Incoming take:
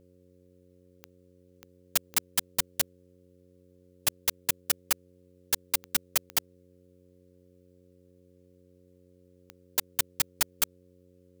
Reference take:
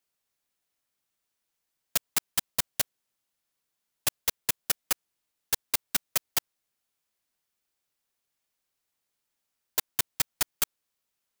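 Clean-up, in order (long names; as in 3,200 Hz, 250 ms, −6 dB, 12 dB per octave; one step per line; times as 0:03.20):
click removal
hum removal 90.3 Hz, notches 6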